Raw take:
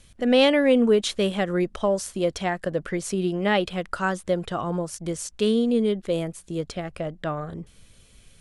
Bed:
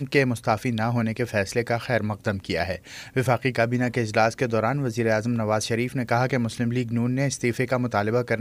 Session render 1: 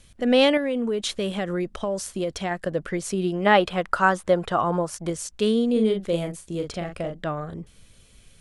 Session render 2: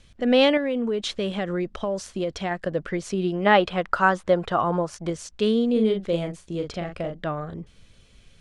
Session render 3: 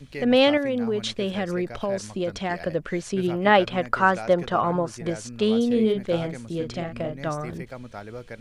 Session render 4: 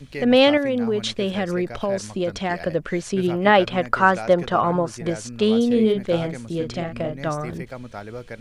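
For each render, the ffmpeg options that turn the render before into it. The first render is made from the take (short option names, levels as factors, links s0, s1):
-filter_complex "[0:a]asettb=1/sr,asplit=3[s0][s1][s2];[s0]atrim=end=0.574[s3];[s1]atrim=start=0.57:end=2.51,asetpts=PTS-STARTPTS,afade=t=in:d=0.004:c=qsin,afade=t=out:st=1.936:d=0.004:c=qsin,acompressor=threshold=0.0794:ratio=5:attack=3.2:release=140:knee=1:detection=peak[s4];[s2]atrim=start=2.506[s5];[s3][s4]acrossfade=d=0.004:c1=hsin:c2=qsin[s6];[s6][s5]acrossfade=d=0.004:c1=qsin:c2=hsin,asettb=1/sr,asplit=3[s7][s8][s9];[s7]atrim=end=3.464[s10];[s8]atrim=start=3.46:end=5.1,asetpts=PTS-STARTPTS,afade=t=in:d=0.004:c=qsin,afade=t=out:st=1.636:d=0.004:c=qsin,equalizer=f=1000:t=o:w=2:g=8[s11];[s9]atrim=start=5.096[s12];[s10][s11]acrossfade=d=0.004:c1=hsin:c2=qsin[s13];[s13][s12]acrossfade=d=0.004:c1=qsin:c2=hsin,asettb=1/sr,asplit=3[s14][s15][s16];[s14]atrim=end=5.724[s17];[s15]atrim=start=5.72:end=7.27,asetpts=PTS-STARTPTS,afade=t=in:d=0.004:c=qsin,afade=t=out:st=1.546:d=0.004:c=qsin,asplit=2[s18][s19];[s19]adelay=41,volume=0.501[s20];[s18][s20]amix=inputs=2:normalize=0,atrim=end_sample=68355[s21];[s16]atrim=start=7.266[s22];[s17][s21]acrossfade=d=0.004:c1=hsin:c2=qsin[s23];[s23][s22]acrossfade=d=0.004:c1=qsin:c2=hsin"
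-af "lowpass=5700"
-filter_complex "[1:a]volume=0.178[s0];[0:a][s0]amix=inputs=2:normalize=0"
-af "volume=1.41,alimiter=limit=0.708:level=0:latency=1"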